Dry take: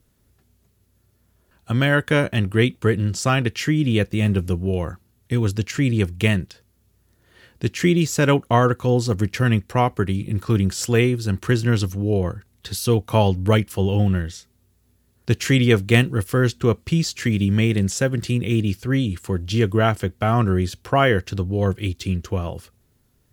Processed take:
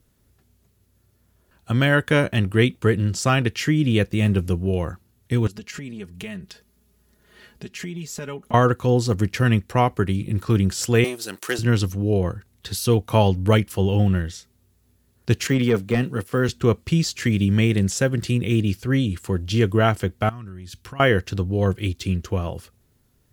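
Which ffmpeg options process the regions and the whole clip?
-filter_complex "[0:a]asettb=1/sr,asplit=3[a][b][c];[a]atrim=end=5.474[d];[b]atrim=start=5.47:end=8.54,asetpts=PTS-STARTPTS,afade=t=in:d=0.004:c=qsin,afade=t=out:st=3.066:d=0.004:c=qsin,acompressor=threshold=-34dB:ratio=4:attack=3.2:release=140:knee=1:detection=peak,aecho=1:1:4.8:0.73,atrim=end_sample=135387[e];[c]atrim=start=8.536[f];[d][e]acrossfade=d=0.004:c1=hsin:c2=qsin[g];[g][f]acrossfade=d=0.004:c1=qsin:c2=hsin,asettb=1/sr,asplit=3[h][i][j];[h]atrim=end=11.044[k];[i]atrim=start=11.04:end=11.59,asetpts=PTS-STARTPTS,afade=t=in:d=0.004:c=qsin,afade=t=out:st=0.546:d=0.004:c=qsin,aeval=exprs='if(lt(val(0),0),0.447*val(0),val(0))':c=same,highpass=420,highshelf=f=4.5k:g=12[l];[j]atrim=start=11.586[m];[k][l]acrossfade=d=0.004:c1=hsin:c2=qsin[n];[n][m]acrossfade=d=0.004:c1=qsin:c2=hsin,asettb=1/sr,asplit=3[o][p][q];[o]atrim=end=15.474[r];[p]atrim=start=15.47:end=16.49,asetpts=PTS-STARTPTS,afade=t=in:d=0.004:c=qsin,afade=t=out:st=1.016:d=0.004:c=qsin,highpass=150,deesser=0.85,bandreject=f=330:w=6.3[s];[q]atrim=start=16.486[t];[r][s]acrossfade=d=0.004:c1=hsin:c2=qsin[u];[u][t]acrossfade=d=0.004:c1=qsin:c2=hsin,asettb=1/sr,asplit=3[v][w][x];[v]atrim=end=20.294[y];[w]atrim=start=20.29:end=21,asetpts=PTS-STARTPTS,afade=t=in:d=0.004:c=qsin,afade=t=out:st=0.706:d=0.004:c=qsin,equalizer=f=590:w=0.99:g=-12.5,acompressor=threshold=-32dB:ratio=20:attack=3.2:release=140:knee=1:detection=peak[z];[x]atrim=start=20.996[aa];[y][z]acrossfade=d=0.004:c1=hsin:c2=qsin[ab];[ab][aa]acrossfade=d=0.004:c1=qsin:c2=hsin"

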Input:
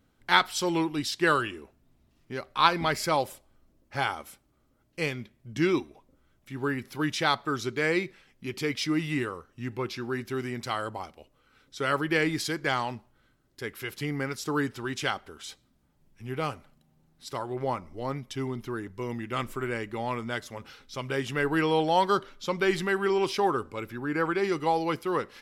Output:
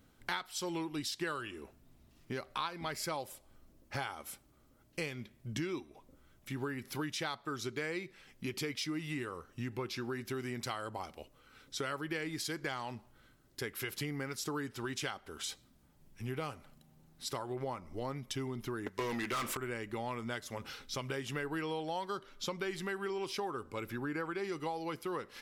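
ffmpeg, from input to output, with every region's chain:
-filter_complex "[0:a]asettb=1/sr,asplit=3[a][b][c];[a]atrim=end=18.864[d];[b]atrim=start=18.86:end=19.57,asetpts=PTS-STARTPTS,afade=t=in:d=0.004:c=qsin,afade=t=out:st=0.706:d=0.004:c=qsin,agate=range=-14dB:threshold=-44dB:ratio=16:release=100:detection=peak,asplit=2[e][f];[f]highpass=f=720:p=1,volume=28dB,asoftclip=type=tanh:threshold=-15dB[g];[e][g]amix=inputs=2:normalize=0,lowpass=f=6.6k:p=1,volume=-6dB[h];[c]atrim=start=19.566[i];[d][h]acrossfade=d=0.004:c1=hsin:c2=qsin[j];[j][i]acrossfade=d=0.004:c1=qsin:c2=hsin,highshelf=f=5.6k:g=5,acompressor=threshold=-38dB:ratio=6,volume=2dB"

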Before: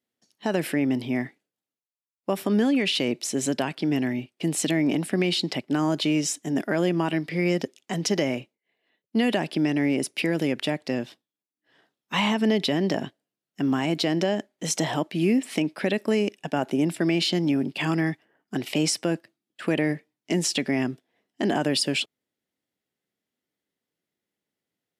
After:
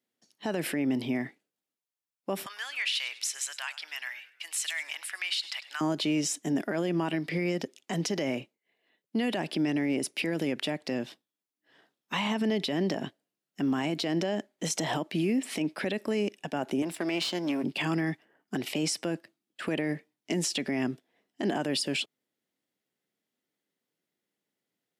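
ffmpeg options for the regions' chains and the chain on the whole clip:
-filter_complex "[0:a]asettb=1/sr,asplit=3[a][b][c];[a]atrim=end=2.464[d];[b]atrim=start=2.46:end=5.81,asetpts=PTS-STARTPTS,afade=t=in:d=0.004:c=qsin,afade=t=out:st=3.346:d=0.004:c=qsin,highpass=f=1.2k:w=0.5412,highpass=f=1.2k:w=1.3066,asplit=4[e][f][g][h];[f]adelay=101,afreqshift=-77,volume=-18dB[i];[g]adelay=202,afreqshift=-154,volume=-25.7dB[j];[h]adelay=303,afreqshift=-231,volume=-33.5dB[k];[e][i][j][k]amix=inputs=4:normalize=0,atrim=end_sample=147735[l];[c]atrim=start=5.806[m];[d][l]acrossfade=d=0.004:c1=hsin:c2=qsin[n];[n][m]acrossfade=d=0.004:c1=qsin:c2=hsin,asettb=1/sr,asplit=3[o][p][q];[o]atrim=end=16.824[r];[p]atrim=start=16.82:end=17.64,asetpts=PTS-STARTPTS,afade=t=in:d=0.004:c=qsin,afade=t=out:st=0.816:d=0.004:c=qsin,aeval=exprs='if(lt(val(0),0),0.447*val(0),val(0))':c=same,highpass=f=340:p=1[s];[q]atrim=start=17.636[t];[r][s]acrossfade=d=0.004:c1=hsin:c2=qsin[u];[u][t]acrossfade=d=0.004:c1=qsin:c2=hsin,highpass=130,alimiter=limit=-20.5dB:level=0:latency=1:release=86"

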